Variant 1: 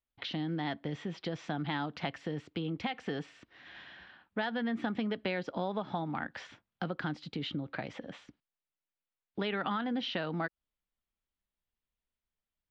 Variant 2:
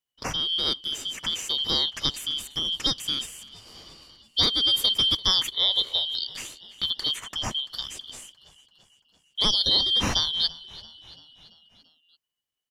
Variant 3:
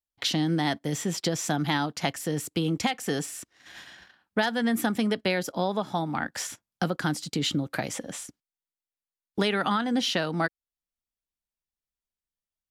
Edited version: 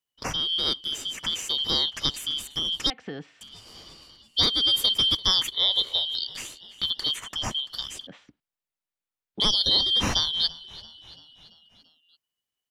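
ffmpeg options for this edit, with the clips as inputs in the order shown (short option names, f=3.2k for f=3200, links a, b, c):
-filter_complex "[0:a]asplit=2[a][b];[1:a]asplit=3[c][d][e];[c]atrim=end=2.902[f];[a]atrim=start=2.898:end=3.412[g];[d]atrim=start=3.408:end=8.072[h];[b]atrim=start=8.068:end=9.402[i];[e]atrim=start=9.398[j];[f][g]acrossfade=d=0.004:c1=hsin:c2=hsin[k];[k][h]acrossfade=d=0.004:c1=hsin:c2=hsin[l];[l][i]acrossfade=d=0.004:c1=hsin:c2=hsin[m];[m][j]acrossfade=d=0.004:c1=hsin:c2=hsin"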